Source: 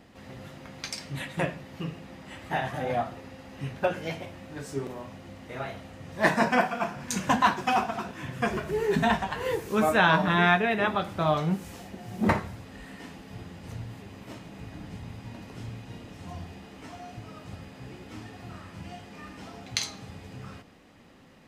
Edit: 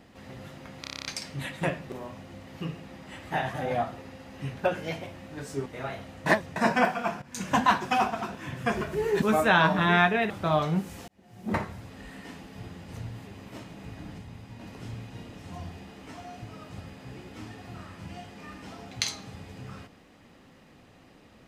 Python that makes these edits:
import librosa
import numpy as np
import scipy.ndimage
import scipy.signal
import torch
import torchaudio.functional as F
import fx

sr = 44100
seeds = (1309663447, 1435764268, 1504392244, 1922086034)

y = fx.edit(x, sr, fx.stutter(start_s=0.81, slice_s=0.03, count=9),
    fx.move(start_s=4.85, length_s=0.57, to_s=1.66),
    fx.reverse_span(start_s=6.02, length_s=0.3),
    fx.fade_in_from(start_s=6.98, length_s=0.35, floor_db=-16.0),
    fx.cut(start_s=8.98, length_s=0.73),
    fx.cut(start_s=10.79, length_s=0.26),
    fx.fade_in_span(start_s=11.83, length_s=0.85),
    fx.clip_gain(start_s=14.93, length_s=0.43, db=-3.5), tone=tone)